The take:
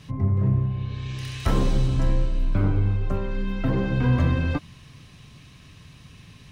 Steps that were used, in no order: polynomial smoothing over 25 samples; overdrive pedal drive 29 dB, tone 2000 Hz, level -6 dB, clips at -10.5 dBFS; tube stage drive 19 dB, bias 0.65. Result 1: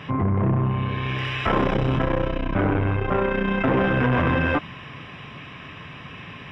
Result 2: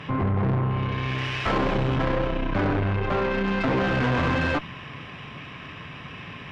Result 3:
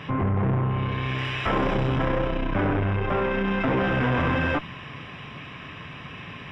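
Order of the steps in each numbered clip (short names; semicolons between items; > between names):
tube stage > overdrive pedal > polynomial smoothing; overdrive pedal > polynomial smoothing > tube stage; overdrive pedal > tube stage > polynomial smoothing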